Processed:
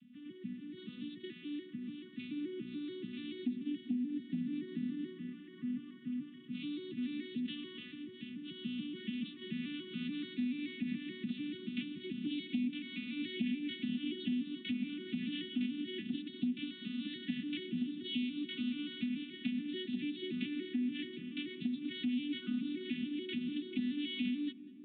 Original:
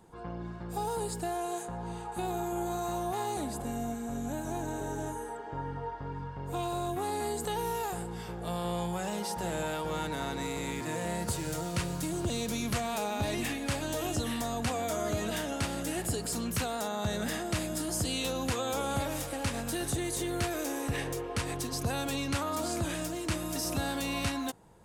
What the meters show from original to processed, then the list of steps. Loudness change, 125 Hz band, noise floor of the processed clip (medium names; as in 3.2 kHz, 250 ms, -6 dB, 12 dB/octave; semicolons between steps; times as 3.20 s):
-6.0 dB, -15.5 dB, -53 dBFS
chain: vocoder on a broken chord minor triad, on B3, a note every 144 ms; elliptic band-stop 200–2600 Hz, stop band 70 dB; compression, threshold -46 dBFS, peak gain reduction 10 dB; distance through air 110 m; comb of notches 520 Hz; filtered feedback delay 194 ms, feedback 81%, low-pass 1.1 kHz, level -15.5 dB; resampled via 8 kHz; trim +14 dB